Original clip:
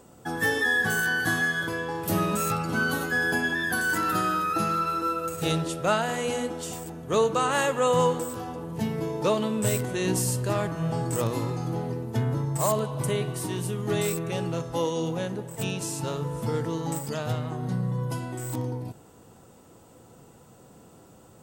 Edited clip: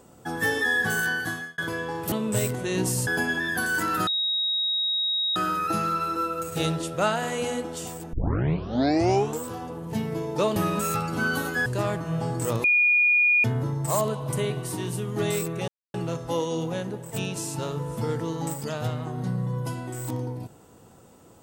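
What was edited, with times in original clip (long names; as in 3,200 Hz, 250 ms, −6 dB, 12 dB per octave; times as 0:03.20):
0:01.07–0:01.58: fade out
0:02.12–0:03.22: swap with 0:09.42–0:10.37
0:04.22: insert tone 3,790 Hz −22.5 dBFS 1.29 s
0:06.99: tape start 1.30 s
0:11.35–0:12.15: beep over 2,440 Hz −16.5 dBFS
0:14.39: splice in silence 0.26 s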